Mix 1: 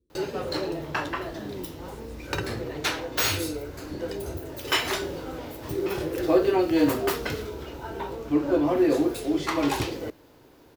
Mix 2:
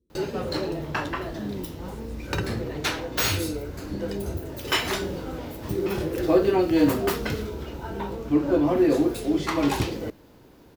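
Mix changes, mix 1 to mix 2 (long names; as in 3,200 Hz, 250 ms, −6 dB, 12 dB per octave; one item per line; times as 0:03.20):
background: add low-shelf EQ 140 Hz +6.5 dB
master: add parametric band 200 Hz +10 dB 0.31 octaves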